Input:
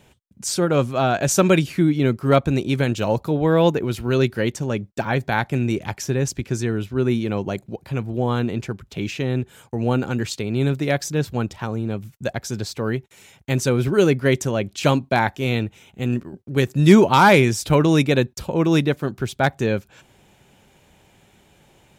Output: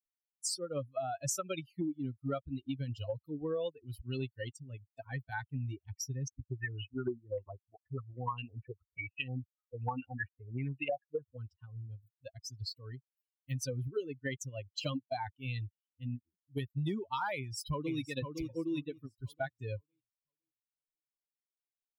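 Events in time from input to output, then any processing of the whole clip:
6.28–11.37 stepped low-pass 10 Hz 450–2700 Hz
17.35–17.96 echo throw 0.51 s, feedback 55%, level -4 dB
whole clip: per-bin expansion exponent 3; low shelf 160 Hz -7 dB; compressor 16:1, threshold -34 dBFS; gain +1.5 dB

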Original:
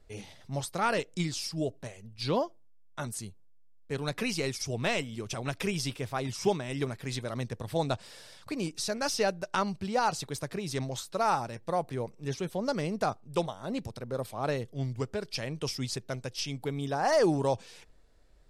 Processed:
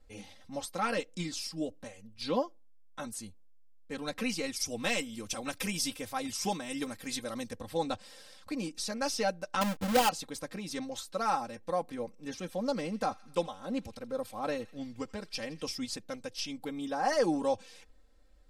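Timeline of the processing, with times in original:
4.56–7.55 high shelf 6100 Hz +11.5 dB
9.61–10.09 half-waves squared off
12.26–15.64 thin delay 83 ms, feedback 60%, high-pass 1700 Hz, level -17.5 dB
whole clip: comb 3.8 ms, depth 88%; gain -5 dB

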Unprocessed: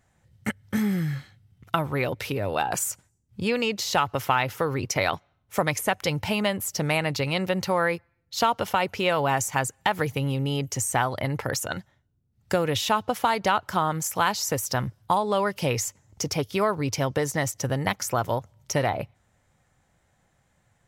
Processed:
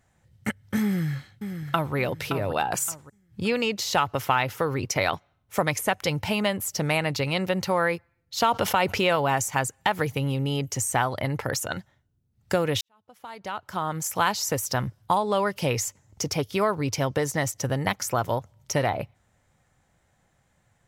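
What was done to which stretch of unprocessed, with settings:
0.84–1.95 echo throw 0.57 s, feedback 30%, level -8 dB
8.46–9.16 fast leveller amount 50%
12.81–14.12 fade in quadratic

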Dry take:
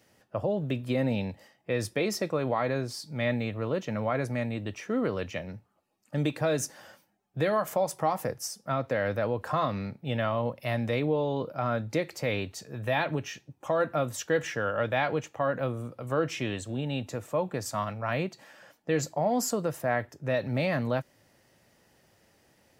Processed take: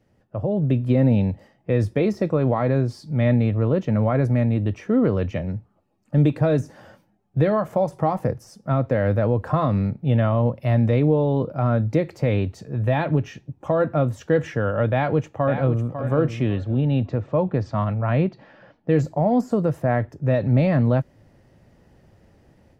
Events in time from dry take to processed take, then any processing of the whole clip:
14.92–15.91 echo throw 0.55 s, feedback 20%, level -8.5 dB
16.56–18.9 LPF 4700 Hz 24 dB/oct
whole clip: de-esser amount 80%; tilt -3.5 dB/oct; AGC gain up to 8.5 dB; gain -4.5 dB

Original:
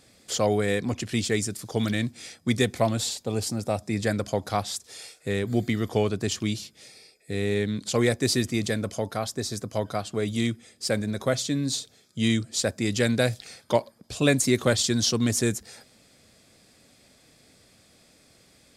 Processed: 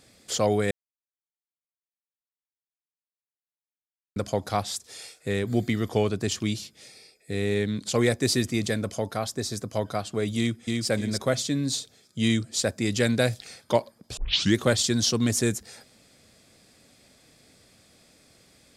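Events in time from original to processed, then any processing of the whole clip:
0.71–4.16 mute
10.37–10.87 echo throw 0.3 s, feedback 30%, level -2.5 dB
14.17 tape start 0.40 s

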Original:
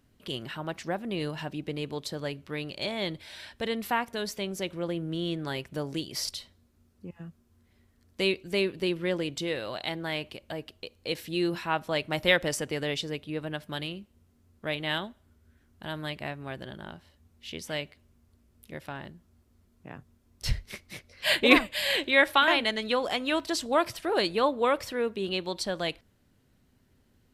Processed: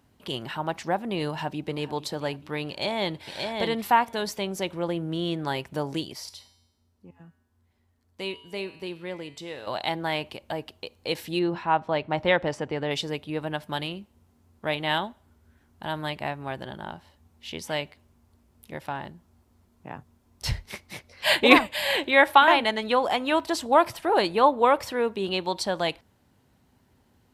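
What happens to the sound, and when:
1.23–1.92 echo throw 0.44 s, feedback 55%, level -16.5 dB
2.69–3.23 echo throw 0.58 s, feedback 10%, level -3.5 dB
6.13–9.67 resonator 88 Hz, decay 0.89 s, harmonics odd, mix 70%
11.39–12.91 tape spacing loss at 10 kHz 22 dB
21.76–24.83 bell 5400 Hz -4 dB 1.6 oct
whole clip: HPF 49 Hz; bell 870 Hz +9 dB 0.6 oct; gain +2.5 dB

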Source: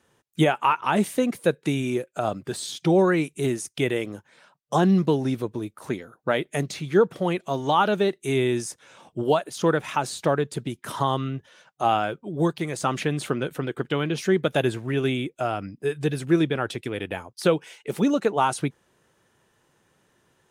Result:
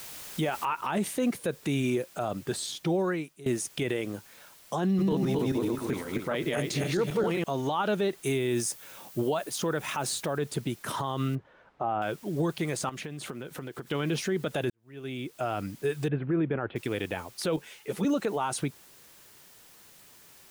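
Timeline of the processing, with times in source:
0.65 noise floor step -43 dB -55 dB
2.43–3.46 fade out, to -22.5 dB
4.86–7.44 regenerating reverse delay 0.132 s, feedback 46%, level 0 dB
8.26–10.37 high shelf 10000 Hz +8.5 dB
11.35–12.02 LPF 1300 Hz
12.89–13.87 compressor 12:1, threshold -34 dBFS
14.7–15.51 fade in quadratic
16.08–16.76 Bessel low-pass 1600 Hz, order 8
17.56–18.05 ensemble effect
whole clip: limiter -19.5 dBFS

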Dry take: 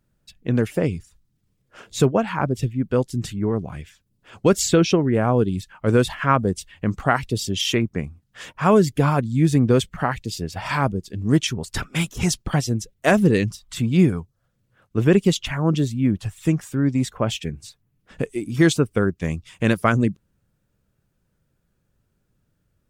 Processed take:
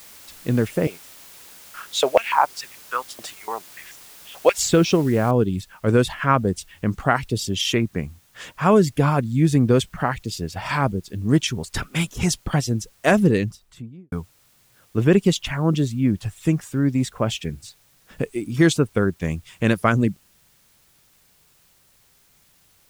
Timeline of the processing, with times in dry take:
0.87–4.58 stepped high-pass 6.9 Hz 620–6300 Hz
5.31 noise floor step -45 dB -59 dB
13.17–14.12 studio fade out

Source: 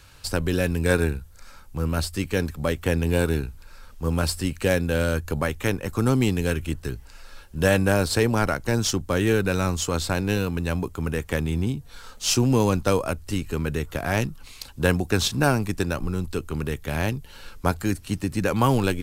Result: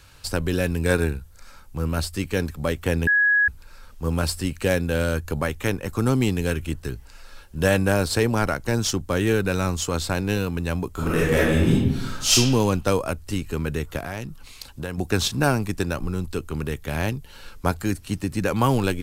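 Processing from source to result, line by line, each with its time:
3.07–3.48 bleep 1670 Hz -15 dBFS
10.92–12.32 reverb throw, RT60 1 s, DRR -8 dB
13.99–14.98 compressor 3:1, threshold -29 dBFS

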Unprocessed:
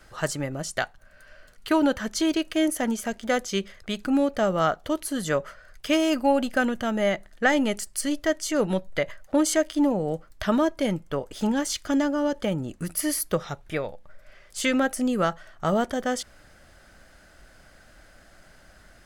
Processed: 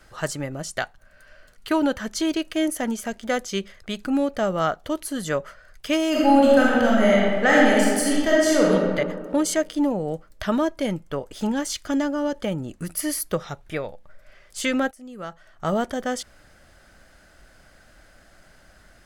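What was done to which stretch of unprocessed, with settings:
6.1–8.72 reverb throw, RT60 1.8 s, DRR -5.5 dB
14.91–15.69 fade in quadratic, from -18.5 dB

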